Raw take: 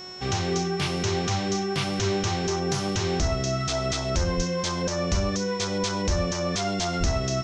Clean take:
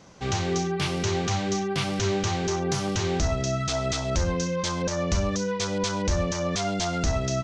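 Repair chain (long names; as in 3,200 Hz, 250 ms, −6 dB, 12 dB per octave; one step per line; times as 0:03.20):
hum removal 367.5 Hz, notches 21
notch filter 5,400 Hz, Q 30
0:04.36–0:04.48: high-pass filter 140 Hz 24 dB per octave
0:06.99–0:07.11: high-pass filter 140 Hz 24 dB per octave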